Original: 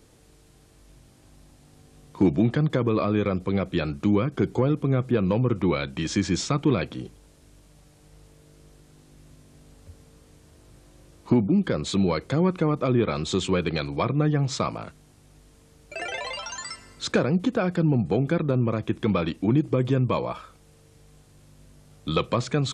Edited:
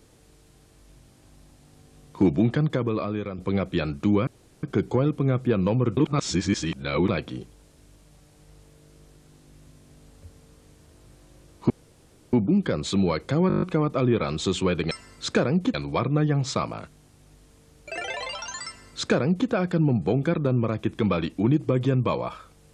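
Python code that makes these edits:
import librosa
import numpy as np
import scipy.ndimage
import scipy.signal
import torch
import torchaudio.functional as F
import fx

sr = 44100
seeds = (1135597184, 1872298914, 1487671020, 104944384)

y = fx.edit(x, sr, fx.fade_out_to(start_s=2.58, length_s=0.8, floor_db=-10.0),
    fx.insert_room_tone(at_s=4.27, length_s=0.36),
    fx.reverse_span(start_s=5.61, length_s=1.12),
    fx.insert_room_tone(at_s=11.34, length_s=0.63),
    fx.stutter(start_s=12.49, slice_s=0.02, count=8),
    fx.duplicate(start_s=16.7, length_s=0.83, to_s=13.78), tone=tone)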